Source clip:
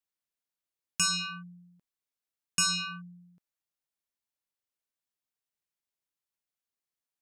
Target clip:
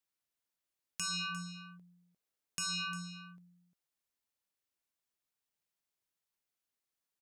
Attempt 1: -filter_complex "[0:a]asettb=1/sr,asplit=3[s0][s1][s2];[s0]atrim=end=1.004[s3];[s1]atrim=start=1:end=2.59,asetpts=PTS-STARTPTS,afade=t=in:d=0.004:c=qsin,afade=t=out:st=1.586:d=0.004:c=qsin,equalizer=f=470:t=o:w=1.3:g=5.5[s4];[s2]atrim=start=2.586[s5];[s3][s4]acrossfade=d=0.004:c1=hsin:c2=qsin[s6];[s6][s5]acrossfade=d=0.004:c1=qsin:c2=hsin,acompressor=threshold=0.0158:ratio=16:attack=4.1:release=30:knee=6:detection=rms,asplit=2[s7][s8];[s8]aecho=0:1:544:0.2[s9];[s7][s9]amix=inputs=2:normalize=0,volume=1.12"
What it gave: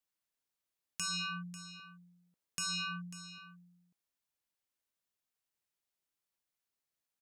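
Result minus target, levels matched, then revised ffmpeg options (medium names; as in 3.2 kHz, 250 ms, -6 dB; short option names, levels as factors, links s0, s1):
echo 193 ms late
-filter_complex "[0:a]asettb=1/sr,asplit=3[s0][s1][s2];[s0]atrim=end=1.004[s3];[s1]atrim=start=1:end=2.59,asetpts=PTS-STARTPTS,afade=t=in:d=0.004:c=qsin,afade=t=out:st=1.586:d=0.004:c=qsin,equalizer=f=470:t=o:w=1.3:g=5.5[s4];[s2]atrim=start=2.586[s5];[s3][s4]acrossfade=d=0.004:c1=hsin:c2=qsin[s6];[s6][s5]acrossfade=d=0.004:c1=qsin:c2=hsin,acompressor=threshold=0.0158:ratio=16:attack=4.1:release=30:knee=6:detection=rms,asplit=2[s7][s8];[s8]aecho=0:1:351:0.2[s9];[s7][s9]amix=inputs=2:normalize=0,volume=1.12"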